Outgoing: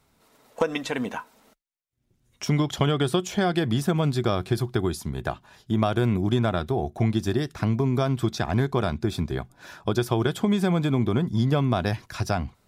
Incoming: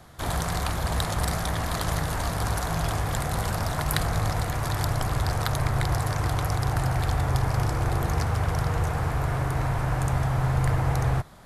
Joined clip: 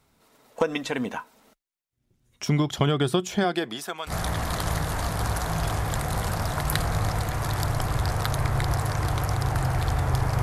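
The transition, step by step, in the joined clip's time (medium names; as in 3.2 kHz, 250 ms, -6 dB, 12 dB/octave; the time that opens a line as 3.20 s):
outgoing
3.43–4.14 s: high-pass 210 Hz -> 1.4 kHz
4.10 s: go over to incoming from 1.31 s, crossfade 0.08 s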